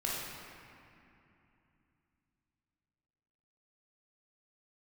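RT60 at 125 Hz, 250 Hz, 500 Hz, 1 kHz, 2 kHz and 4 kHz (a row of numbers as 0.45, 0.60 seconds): 4.0, 3.9, 2.7, 2.8, 2.7, 1.7 seconds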